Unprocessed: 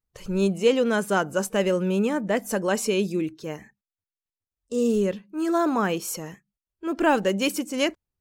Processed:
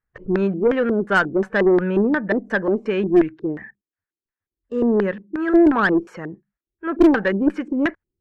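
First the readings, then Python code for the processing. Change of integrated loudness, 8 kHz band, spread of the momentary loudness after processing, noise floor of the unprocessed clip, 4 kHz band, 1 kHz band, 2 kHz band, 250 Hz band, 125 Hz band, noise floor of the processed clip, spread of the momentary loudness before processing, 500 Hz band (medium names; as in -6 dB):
+5.0 dB, under -20 dB, 13 LU, under -85 dBFS, no reading, +2.0 dB, +7.0 dB, +7.0 dB, +2.5 dB, under -85 dBFS, 11 LU, +4.0 dB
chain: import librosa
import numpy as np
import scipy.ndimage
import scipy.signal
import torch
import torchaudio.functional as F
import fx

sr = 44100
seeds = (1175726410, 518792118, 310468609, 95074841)

y = fx.filter_lfo_lowpass(x, sr, shape='square', hz=2.8, low_hz=350.0, high_hz=1700.0, q=5.0)
y = fx.cheby_harmonics(y, sr, harmonics=(2, 5), levels_db=(-17, -26), full_scale_db=-7.0)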